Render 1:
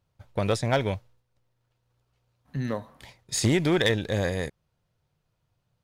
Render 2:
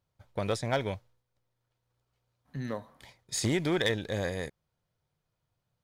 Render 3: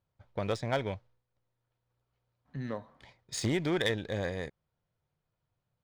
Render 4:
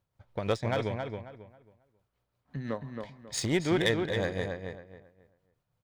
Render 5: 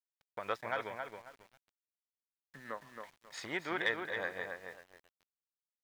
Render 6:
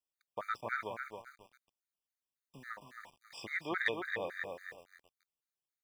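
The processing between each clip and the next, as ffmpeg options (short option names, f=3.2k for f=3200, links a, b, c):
-af "lowshelf=f=200:g=-3.5,bandreject=f=2.7k:w=17,volume=-4.5dB"
-af "adynamicsmooth=sensitivity=6:basefreq=4.7k,volume=-1.5dB"
-filter_complex "[0:a]tremolo=f=5.9:d=0.52,asplit=2[a][b];[b]adelay=271,lowpass=f=2.7k:p=1,volume=-5dB,asplit=2[c][d];[d]adelay=271,lowpass=f=2.7k:p=1,volume=0.28,asplit=2[e][f];[f]adelay=271,lowpass=f=2.7k:p=1,volume=0.28,asplit=2[g][h];[h]adelay=271,lowpass=f=2.7k:p=1,volume=0.28[i];[c][e][g][i]amix=inputs=4:normalize=0[j];[a][j]amix=inputs=2:normalize=0,volume=4dB"
-af "bandpass=f=1.4k:t=q:w=1.4:csg=0,aeval=exprs='val(0)*gte(abs(val(0)),0.00126)':c=same,volume=1dB"
-af "afftfilt=real='re*gt(sin(2*PI*3.6*pts/sr)*(1-2*mod(floor(b*sr/1024/1200),2)),0)':imag='im*gt(sin(2*PI*3.6*pts/sr)*(1-2*mod(floor(b*sr/1024/1200),2)),0)':win_size=1024:overlap=0.75,volume=2.5dB"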